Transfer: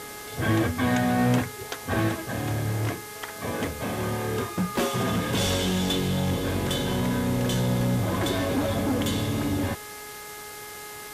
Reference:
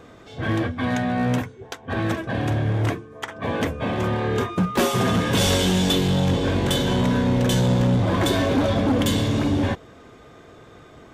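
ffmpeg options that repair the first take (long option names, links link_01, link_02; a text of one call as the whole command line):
ffmpeg -i in.wav -af "bandreject=frequency=418.8:width_type=h:width=4,bandreject=frequency=837.6:width_type=h:width=4,bandreject=frequency=1256.4:width_type=h:width=4,bandreject=frequency=1675.2:width_type=h:width=4,bandreject=frequency=2094:width_type=h:width=4,afwtdn=0.0089,asetnsamples=nb_out_samples=441:pad=0,asendcmd='2.09 volume volume 5.5dB',volume=0dB" out.wav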